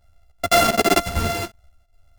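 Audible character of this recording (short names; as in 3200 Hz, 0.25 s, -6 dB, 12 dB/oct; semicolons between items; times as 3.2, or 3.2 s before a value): a buzz of ramps at a fixed pitch in blocks of 64 samples; chopped level 2.6 Hz, depth 65%, duty 80%; a shimmering, thickened sound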